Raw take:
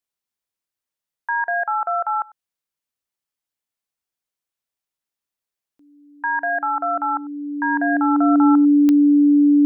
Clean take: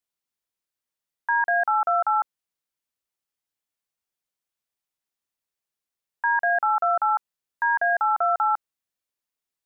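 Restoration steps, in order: de-click; band-stop 290 Hz, Q 30; inverse comb 98 ms -23.5 dB

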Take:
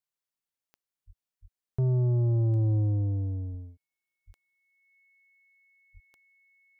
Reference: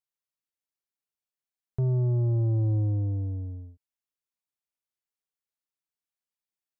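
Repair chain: de-click; band-stop 2.2 kHz, Q 30; de-plosive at 1.06/1.41/2.96/3.50/4.26/5.93 s

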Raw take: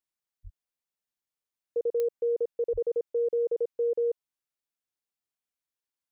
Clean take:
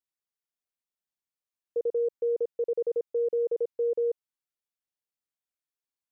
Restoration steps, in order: de-click; de-plosive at 0.43/2.72 s

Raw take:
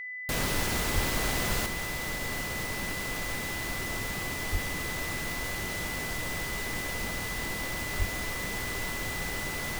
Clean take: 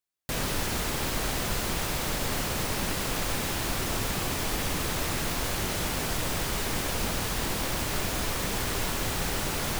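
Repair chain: band-stop 2 kHz, Q 30; de-plosive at 0.94/4.51/7.98 s; gain correction +5.5 dB, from 1.66 s

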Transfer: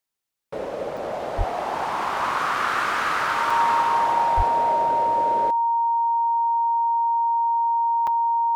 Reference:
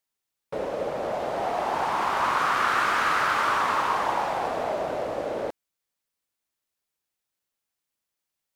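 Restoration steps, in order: band-stop 930 Hz, Q 30; 1.37–1.49 s: high-pass 140 Hz 24 dB/octave; 4.36–4.48 s: high-pass 140 Hz 24 dB/octave; interpolate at 0.97/3.50/8.07 s, 4.5 ms

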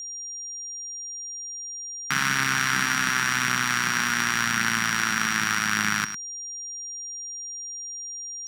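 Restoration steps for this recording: band-stop 5.7 kHz, Q 30; inverse comb 104 ms -11 dB

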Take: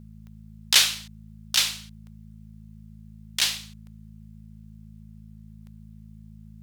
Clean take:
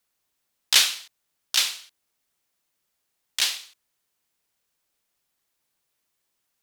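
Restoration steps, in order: de-click; de-hum 53.8 Hz, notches 4

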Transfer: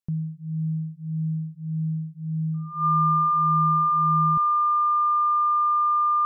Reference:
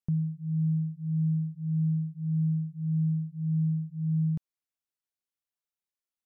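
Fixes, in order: band-stop 1.2 kHz, Q 30

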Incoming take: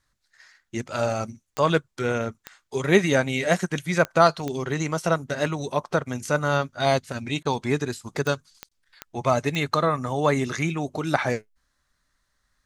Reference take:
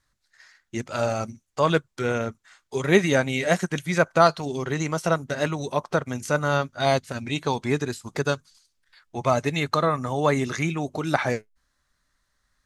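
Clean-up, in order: de-click; interpolate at 7.43/8.69 s, 21 ms

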